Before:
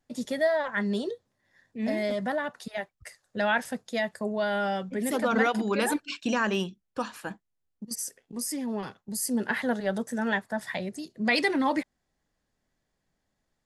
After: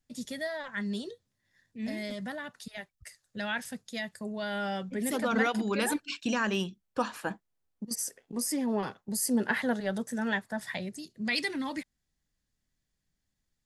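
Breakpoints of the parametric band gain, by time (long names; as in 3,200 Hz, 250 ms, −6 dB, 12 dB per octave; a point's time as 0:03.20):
parametric band 670 Hz 2.8 octaves
0:04.17 −12 dB
0:04.81 −4.5 dB
0:06.62 −4.5 dB
0:07.08 +3.5 dB
0:09.16 +3.5 dB
0:09.93 −5 dB
0:10.73 −5 dB
0:11.33 −13.5 dB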